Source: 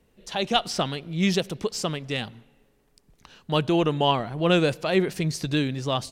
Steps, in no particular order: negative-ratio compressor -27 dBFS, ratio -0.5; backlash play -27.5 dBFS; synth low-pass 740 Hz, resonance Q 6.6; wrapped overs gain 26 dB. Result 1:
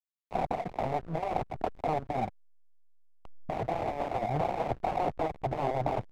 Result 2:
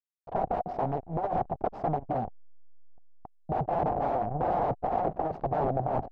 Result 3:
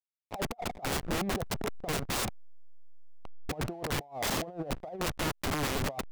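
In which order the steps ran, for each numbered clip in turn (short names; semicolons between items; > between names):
wrapped overs > synth low-pass > negative-ratio compressor > backlash; backlash > wrapped overs > synth low-pass > negative-ratio compressor; synth low-pass > backlash > negative-ratio compressor > wrapped overs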